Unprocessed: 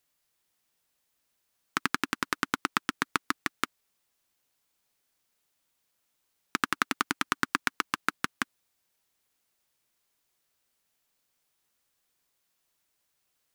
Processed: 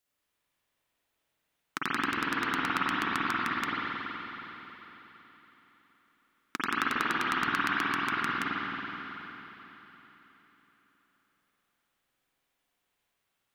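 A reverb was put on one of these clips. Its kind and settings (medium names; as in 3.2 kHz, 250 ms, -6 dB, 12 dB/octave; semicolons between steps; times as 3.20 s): spring tank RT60 3.9 s, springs 46/53 ms, chirp 80 ms, DRR -8.5 dB; trim -7 dB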